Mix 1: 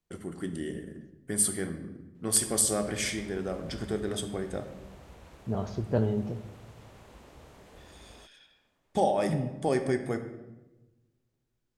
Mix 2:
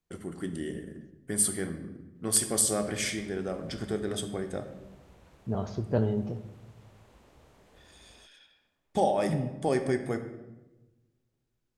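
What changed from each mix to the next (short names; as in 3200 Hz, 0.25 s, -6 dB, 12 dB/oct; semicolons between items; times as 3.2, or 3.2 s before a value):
background -6.5 dB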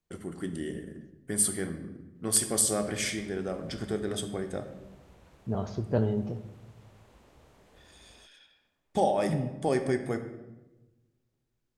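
none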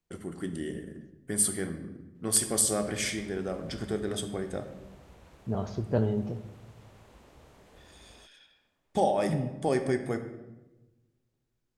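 background +3.0 dB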